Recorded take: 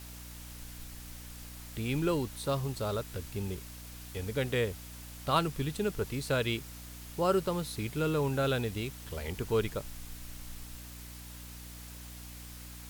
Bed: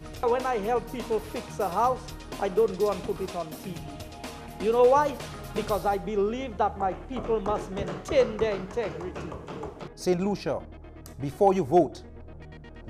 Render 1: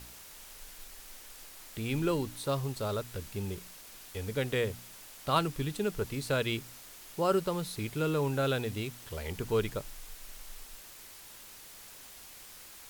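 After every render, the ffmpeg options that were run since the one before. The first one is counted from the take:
-af "bandreject=f=60:t=h:w=4,bandreject=f=120:t=h:w=4,bandreject=f=180:t=h:w=4,bandreject=f=240:t=h:w=4,bandreject=f=300:t=h:w=4"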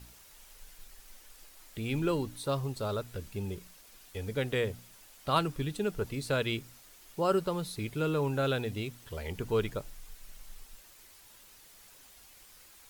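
-af "afftdn=nr=7:nf=-51"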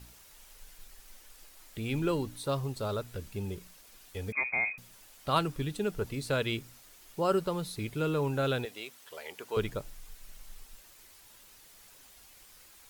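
-filter_complex "[0:a]asettb=1/sr,asplit=3[a][b][c];[a]atrim=end=4.324[d];[b]atrim=start=4.32:end=4.78,asetpts=PTS-STARTPTS,afade=t=in:d=0.004:c=qsin,afade=t=out:st=0.456:d=0.004:c=qsin,lowpass=f=2.2k:t=q:w=0.5098,lowpass=f=2.2k:t=q:w=0.6013,lowpass=f=2.2k:t=q:w=0.9,lowpass=f=2.2k:t=q:w=2.563,afreqshift=-2600[e];[c]atrim=start=4.776[f];[d][e]acrossfade=d=0.004:c1=hsin:c2=qsin[g];[g][f]acrossfade=d=0.004:c1=qsin:c2=hsin,asettb=1/sr,asplit=3[h][i][j];[h]atrim=end=8.654[k];[i]atrim=start=8.65:end=9.57,asetpts=PTS-STARTPTS,afade=t=in:d=0.004:c=qsin,afade=t=out:st=0.916:d=0.004:c=qsin,highpass=550[l];[j]atrim=start=9.566[m];[k][l]acrossfade=d=0.004:c1=hsin:c2=qsin[n];[n][m]acrossfade=d=0.004:c1=qsin:c2=hsin"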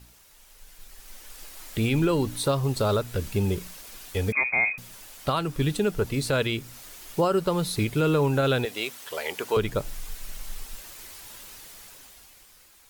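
-af "dynaudnorm=f=110:g=21:m=12.5dB,alimiter=limit=-14dB:level=0:latency=1:release=289"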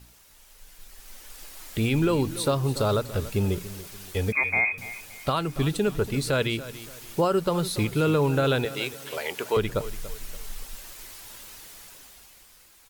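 -af "aecho=1:1:286|572|858:0.168|0.0588|0.0206"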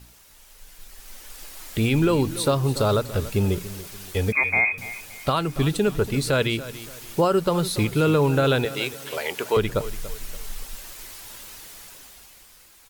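-af "volume=3dB"

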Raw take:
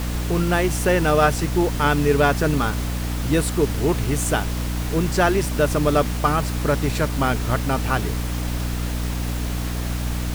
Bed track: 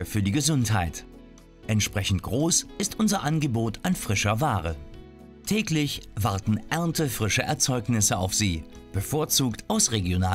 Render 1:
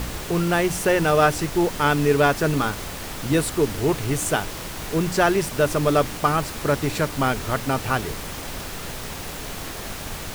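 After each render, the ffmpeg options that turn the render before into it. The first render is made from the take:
-af "bandreject=f=60:t=h:w=4,bandreject=f=120:t=h:w=4,bandreject=f=180:t=h:w=4,bandreject=f=240:t=h:w=4,bandreject=f=300:t=h:w=4"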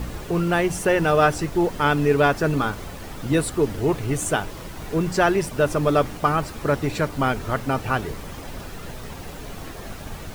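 -af "afftdn=nr=9:nf=-34"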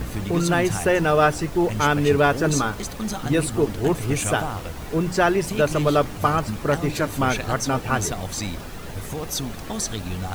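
-filter_complex "[1:a]volume=-5.5dB[a];[0:a][a]amix=inputs=2:normalize=0"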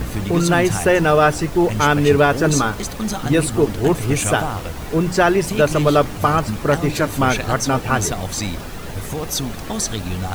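-af "volume=4.5dB,alimiter=limit=-3dB:level=0:latency=1"

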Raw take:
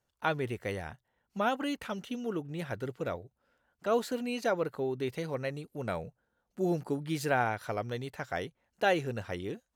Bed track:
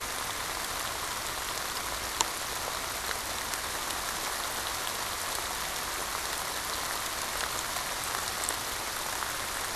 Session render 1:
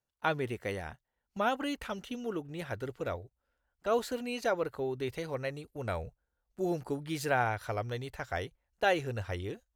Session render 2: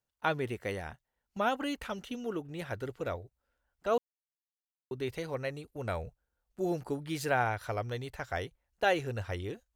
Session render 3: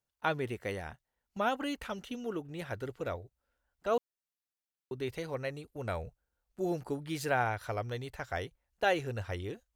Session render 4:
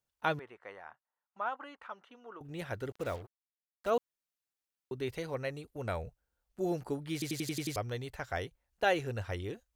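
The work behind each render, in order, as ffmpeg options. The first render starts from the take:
-af "agate=range=-9dB:threshold=-48dB:ratio=16:detection=peak,asubboost=boost=12:cutoff=51"
-filter_complex "[0:a]asplit=3[a][b][c];[a]atrim=end=3.98,asetpts=PTS-STARTPTS,afade=t=out:st=3.976:d=0.004:c=hsin[d];[b]atrim=start=3.98:end=4.91,asetpts=PTS-STARTPTS,volume=0[e];[c]atrim=start=4.91,asetpts=PTS-STARTPTS,afade=t=in:d=0.004:c=hsin[f];[d][e][f]concat=n=3:v=0:a=1"
-af "volume=-1dB"
-filter_complex "[0:a]asettb=1/sr,asplit=3[a][b][c];[a]atrim=end=0.394[d];[b]atrim=start=0.39:end=2.41,asetpts=PTS-STARTPTS,afade=t=in:d=0.004:c=qsin,afade=t=out:st=2.016:d=0.004:c=qsin,bandpass=f=1.1k:t=q:w=2.1[e];[c]atrim=start=2.406[f];[d][e]acrossfade=d=0.004:c1=hsin:c2=qsin[g];[g][f]acrossfade=d=0.004:c1=qsin:c2=hsin,asettb=1/sr,asplit=3[h][i][j];[h]atrim=end=2.914[k];[i]atrim=start=2.91:end=3.9,asetpts=PTS-STARTPTS,afade=t=in:d=0.004:c=qsin,afade=t=out:st=0.986:d=0.004:c=qsin,acrusher=bits=7:mix=0:aa=0.5[l];[j]atrim=start=3.896[m];[k][l]acrossfade=d=0.004:c1=hsin:c2=qsin[n];[n][m]acrossfade=d=0.004:c1=qsin:c2=hsin,asplit=8[o][p][q][r][s][t][u][v];[o]atrim=end=7.222[w];[p]atrim=start=7.128:end=7.222[x];[q]atrim=start=7.128:end=7.222[y];[r]atrim=start=7.128:end=7.222[z];[s]atrim=start=7.128:end=7.222[aa];[t]atrim=start=7.128:end=7.222[ab];[u]atrim=start=7.128:end=7.222[ac];[v]atrim=start=7.758[ad];[w][x]acrossfade=d=0.004:c1=hsin:c2=hsin[ae];[ae][y]acrossfade=d=0.004:c1=hsin:c2=hsin[af];[af][z]acrossfade=d=0.004:c1=hsin:c2=hsin[ag];[ag][aa]acrossfade=d=0.004:c1=hsin:c2=hsin[ah];[ah][ab]acrossfade=d=0.004:c1=hsin:c2=hsin[ai];[ai][ac]acrossfade=d=0.004:c1=hsin:c2=hsin[aj];[aj][ad]acrossfade=d=0.004:c1=hsin:c2=hsin"

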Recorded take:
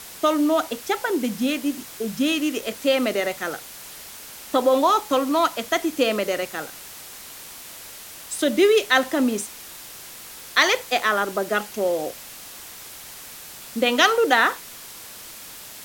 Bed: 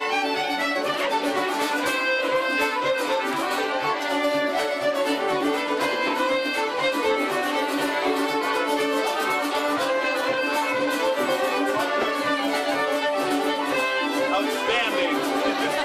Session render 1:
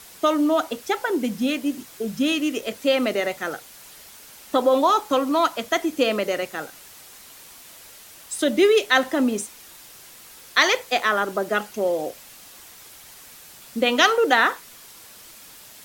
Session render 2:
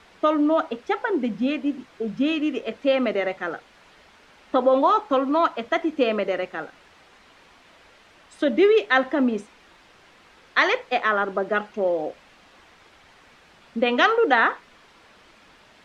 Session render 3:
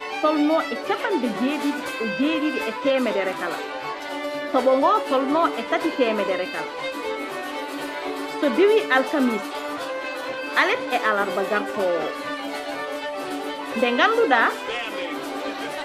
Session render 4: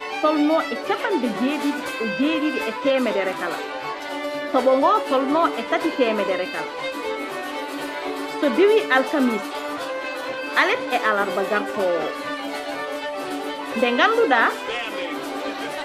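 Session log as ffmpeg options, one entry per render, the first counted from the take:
-af "afftdn=nr=6:nf=-40"
-af "lowpass=2.5k,equalizer=f=120:w=3.4:g=-6.5"
-filter_complex "[1:a]volume=-6dB[a];[0:a][a]amix=inputs=2:normalize=0"
-af "volume=1dB,alimiter=limit=-3dB:level=0:latency=1"

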